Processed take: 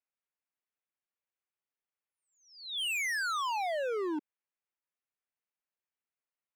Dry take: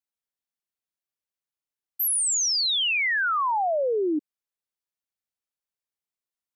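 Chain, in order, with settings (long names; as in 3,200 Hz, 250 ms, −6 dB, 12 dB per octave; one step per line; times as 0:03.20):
Butterworth low-pass 2,800 Hz 36 dB per octave
low-shelf EQ 250 Hz −9.5 dB
hard clipping −32 dBFS, distortion −9 dB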